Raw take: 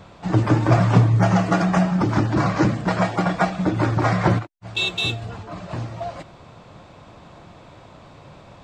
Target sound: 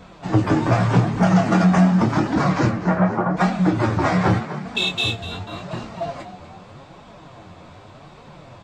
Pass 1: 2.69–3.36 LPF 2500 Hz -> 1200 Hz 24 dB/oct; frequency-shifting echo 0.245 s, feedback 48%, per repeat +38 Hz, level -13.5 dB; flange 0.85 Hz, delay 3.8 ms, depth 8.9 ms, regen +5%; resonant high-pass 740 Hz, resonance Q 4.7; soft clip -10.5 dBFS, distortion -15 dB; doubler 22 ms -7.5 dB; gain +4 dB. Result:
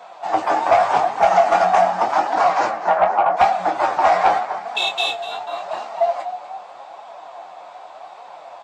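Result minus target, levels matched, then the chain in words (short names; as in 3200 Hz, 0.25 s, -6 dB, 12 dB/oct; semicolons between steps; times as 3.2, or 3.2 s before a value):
1000 Hz band +8.0 dB
2.69–3.36 LPF 2500 Hz -> 1200 Hz 24 dB/oct; frequency-shifting echo 0.245 s, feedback 48%, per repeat +38 Hz, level -13.5 dB; flange 0.85 Hz, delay 3.8 ms, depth 8.9 ms, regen +5%; soft clip -10.5 dBFS, distortion -20 dB; doubler 22 ms -7.5 dB; gain +4 dB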